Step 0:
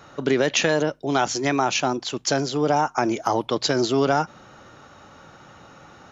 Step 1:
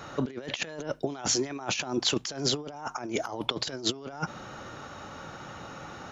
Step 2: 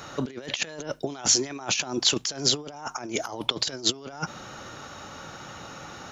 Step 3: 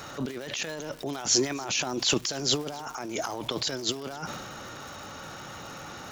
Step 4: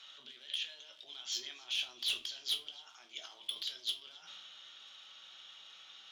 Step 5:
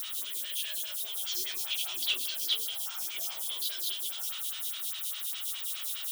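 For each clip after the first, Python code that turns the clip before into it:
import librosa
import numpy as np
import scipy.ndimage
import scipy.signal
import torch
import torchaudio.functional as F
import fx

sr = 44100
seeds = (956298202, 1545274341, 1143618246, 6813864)

y1 = fx.over_compress(x, sr, threshold_db=-28.0, ratio=-0.5)
y1 = F.gain(torch.from_numpy(y1), -2.5).numpy()
y2 = fx.high_shelf(y1, sr, hz=3400.0, db=9.0)
y3 = fx.dmg_crackle(y2, sr, seeds[0], per_s=430.0, level_db=-40.0)
y3 = fx.transient(y3, sr, attack_db=-8, sustain_db=5)
y3 = y3 + 10.0 ** (-22.5 / 20.0) * np.pad(y3, (int(266 * sr / 1000.0), 0))[:len(y3)]
y4 = fx.bandpass_q(y3, sr, hz=3300.0, q=8.2)
y4 = np.clip(y4, -10.0 ** (-31.5 / 20.0), 10.0 ** (-31.5 / 20.0))
y4 = fx.room_shoebox(y4, sr, seeds[1], volume_m3=200.0, walls='furnished', distance_m=1.1)
y4 = F.gain(torch.from_numpy(y4), 2.0).numpy()
y5 = y4 + 0.5 * 10.0 ** (-32.5 / 20.0) * np.diff(np.sign(y4), prepend=np.sign(y4[:1]))
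y5 = y5 + 10.0 ** (-10.5 / 20.0) * np.pad(y5, (int(165 * sr / 1000.0), 0))[:len(y5)]
y5 = fx.stagger_phaser(y5, sr, hz=4.9)
y5 = F.gain(torch.from_numpy(y5), 7.5).numpy()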